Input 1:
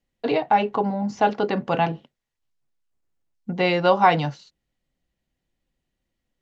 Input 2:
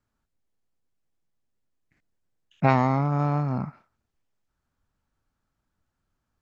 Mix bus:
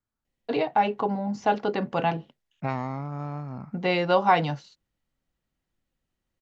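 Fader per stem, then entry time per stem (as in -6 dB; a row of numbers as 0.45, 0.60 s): -3.5, -9.5 dB; 0.25, 0.00 s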